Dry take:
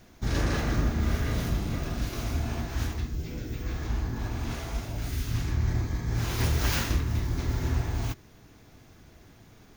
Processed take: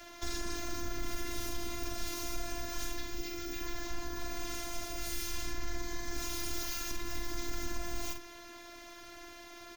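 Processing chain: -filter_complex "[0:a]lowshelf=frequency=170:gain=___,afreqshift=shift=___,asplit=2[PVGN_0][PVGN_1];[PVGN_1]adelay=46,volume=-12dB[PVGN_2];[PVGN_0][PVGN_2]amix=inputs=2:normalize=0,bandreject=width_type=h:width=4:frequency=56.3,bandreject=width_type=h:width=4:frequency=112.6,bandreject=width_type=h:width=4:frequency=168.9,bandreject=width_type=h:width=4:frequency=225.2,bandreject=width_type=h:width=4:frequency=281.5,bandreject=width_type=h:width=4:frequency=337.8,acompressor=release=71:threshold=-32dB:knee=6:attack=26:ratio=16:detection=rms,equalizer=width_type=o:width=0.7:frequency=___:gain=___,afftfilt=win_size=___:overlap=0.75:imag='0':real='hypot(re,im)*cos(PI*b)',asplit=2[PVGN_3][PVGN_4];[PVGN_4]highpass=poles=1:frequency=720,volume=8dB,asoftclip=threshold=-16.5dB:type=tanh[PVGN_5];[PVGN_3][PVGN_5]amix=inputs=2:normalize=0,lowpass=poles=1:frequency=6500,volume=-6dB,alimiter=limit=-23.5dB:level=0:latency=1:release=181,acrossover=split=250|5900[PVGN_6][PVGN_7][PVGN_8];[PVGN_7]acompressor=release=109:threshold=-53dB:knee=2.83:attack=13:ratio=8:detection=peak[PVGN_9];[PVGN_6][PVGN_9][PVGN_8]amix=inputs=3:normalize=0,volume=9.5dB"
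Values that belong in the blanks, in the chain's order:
-7, -59, 250, 2, 512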